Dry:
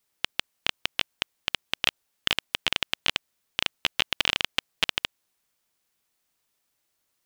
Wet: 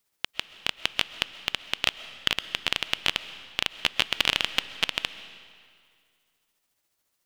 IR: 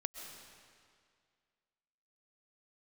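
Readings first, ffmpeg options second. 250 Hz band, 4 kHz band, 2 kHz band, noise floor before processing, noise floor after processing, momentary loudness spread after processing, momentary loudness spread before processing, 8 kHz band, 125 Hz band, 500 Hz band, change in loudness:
0.0 dB, +0.5 dB, +0.5 dB, -77 dBFS, -77 dBFS, 10 LU, 7 LU, 0.0 dB, 0.0 dB, +0.5 dB, +0.5 dB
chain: -filter_complex "[0:a]tremolo=f=14:d=0.4,asplit=2[s0][s1];[1:a]atrim=start_sample=2205[s2];[s1][s2]afir=irnorm=-1:irlink=0,volume=0.631[s3];[s0][s3]amix=inputs=2:normalize=0,volume=0.841"

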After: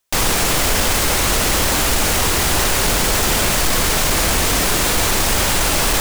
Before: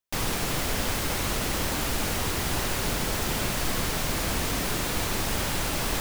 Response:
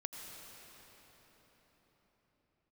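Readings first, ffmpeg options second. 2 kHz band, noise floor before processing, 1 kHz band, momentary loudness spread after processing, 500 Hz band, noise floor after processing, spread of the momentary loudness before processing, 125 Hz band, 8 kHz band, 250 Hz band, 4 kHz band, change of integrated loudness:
+11.5 dB, -29 dBFS, +11.5 dB, 0 LU, +10.5 dB, -17 dBFS, 0 LU, +8.0 dB, +14.0 dB, +8.0 dB, +12.0 dB, +12.0 dB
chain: -filter_complex "[0:a]equalizer=f=125:t=o:w=1:g=-5,equalizer=f=250:t=o:w=1:g=-3,equalizer=f=8000:t=o:w=1:g=3,asplit=2[s0][s1];[s1]alimiter=level_in=1.12:limit=0.0631:level=0:latency=1,volume=0.891,volume=1.12[s2];[s0][s2]amix=inputs=2:normalize=0,asoftclip=type=hard:threshold=0.106,volume=2.66"

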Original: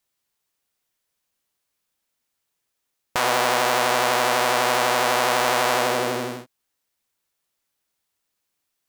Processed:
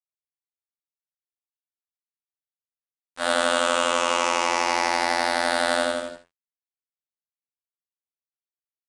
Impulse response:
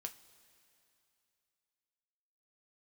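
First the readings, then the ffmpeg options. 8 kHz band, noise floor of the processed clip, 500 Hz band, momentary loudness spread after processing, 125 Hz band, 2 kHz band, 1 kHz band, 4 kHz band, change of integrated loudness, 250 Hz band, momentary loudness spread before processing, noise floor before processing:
-2.5 dB, under -85 dBFS, -2.5 dB, 6 LU, under -10 dB, -2.0 dB, -3.0 dB, -1.5 dB, -2.0 dB, -1.5 dB, 8 LU, -78 dBFS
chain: -filter_complex "[0:a]afftfilt=real='re*pow(10,9/40*sin(2*PI*(0.77*log(max(b,1)*sr/1024/100)/log(2)-(-0.38)*(pts-256)/sr)))':imag='im*pow(10,9/40*sin(2*PI*(0.77*log(max(b,1)*sr/1024/100)/log(2)-(-0.38)*(pts-256)/sr)))':win_size=1024:overlap=0.75,agate=range=0.00251:threshold=0.126:ratio=16:detection=peak,bandreject=f=88.36:t=h:w=4,bandreject=f=176.72:t=h:w=4,bandreject=f=265.08:t=h:w=4,bandreject=f=353.44:t=h:w=4,bandreject=f=441.8:t=h:w=4,bandreject=f=530.16:t=h:w=4,bandreject=f=618.52:t=h:w=4,bandreject=f=706.88:t=h:w=4,dynaudnorm=f=110:g=5:m=6.68,afftfilt=real='hypot(re,im)*cos(PI*b)':imag='0':win_size=2048:overlap=0.75,acrusher=bits=5:mix=0:aa=0.5,asplit=2[s0][s1];[s1]aecho=0:1:45|78:0.188|0.188[s2];[s0][s2]amix=inputs=2:normalize=0,aresample=22050,aresample=44100,volume=0.708"

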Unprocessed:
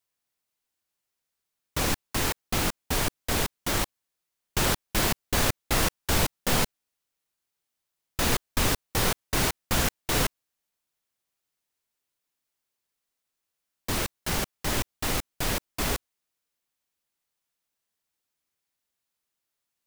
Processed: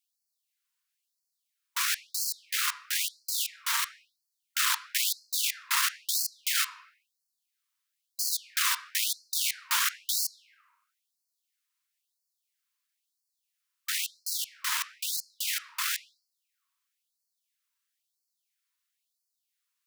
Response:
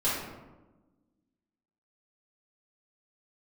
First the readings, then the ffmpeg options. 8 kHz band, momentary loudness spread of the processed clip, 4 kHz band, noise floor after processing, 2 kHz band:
+1.0 dB, 6 LU, +0.5 dB, -83 dBFS, -1.5 dB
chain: -filter_complex "[0:a]aeval=exprs='(tanh(6.31*val(0)+0.55)-tanh(0.55))/6.31':c=same,asplit=2[s0][s1];[1:a]atrim=start_sample=2205,lowpass=6600,highshelf=f=4300:g=-3.5[s2];[s1][s2]afir=irnorm=-1:irlink=0,volume=0.1[s3];[s0][s3]amix=inputs=2:normalize=0,afftfilt=real='re*gte(b*sr/1024,900*pow(4200/900,0.5+0.5*sin(2*PI*1*pts/sr)))':imag='im*gte(b*sr/1024,900*pow(4200/900,0.5+0.5*sin(2*PI*1*pts/sr)))':win_size=1024:overlap=0.75,volume=1.5"

